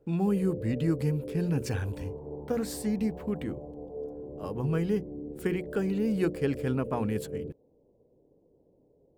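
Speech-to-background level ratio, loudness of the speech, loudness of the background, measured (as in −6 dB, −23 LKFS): 9.5 dB, −31.0 LKFS, −40.5 LKFS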